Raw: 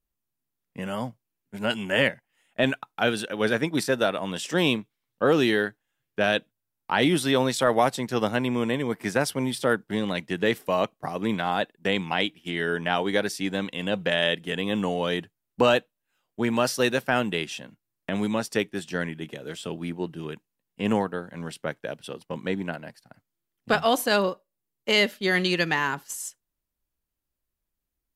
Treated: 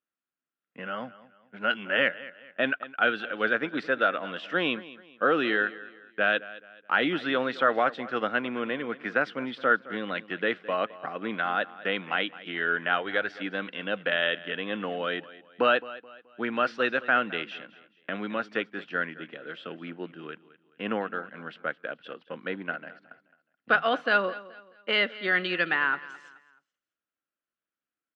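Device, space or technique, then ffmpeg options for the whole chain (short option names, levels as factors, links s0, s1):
phone earpiece: -filter_complex "[0:a]highpass=340,equalizer=f=400:t=q:w=4:g=-6,equalizer=f=630:t=q:w=4:g=-3,equalizer=f=910:t=q:w=4:g=-10,equalizer=f=1400:t=q:w=4:g=8,equalizer=f=2200:t=q:w=4:g=-3,lowpass=f=3000:w=0.5412,lowpass=f=3000:w=1.3066,aecho=1:1:214|428|642:0.126|0.0453|0.0163,asplit=3[s0][s1][s2];[s0]afade=t=out:st=12.98:d=0.02[s3];[s1]asubboost=boost=11:cutoff=63,afade=t=in:st=12.98:d=0.02,afade=t=out:st=13.39:d=0.02[s4];[s2]afade=t=in:st=13.39:d=0.02[s5];[s3][s4][s5]amix=inputs=3:normalize=0"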